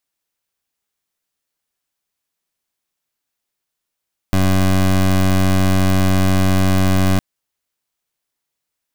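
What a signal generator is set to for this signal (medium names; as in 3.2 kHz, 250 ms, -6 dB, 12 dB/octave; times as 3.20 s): pulse 94.2 Hz, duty 21% -13.5 dBFS 2.86 s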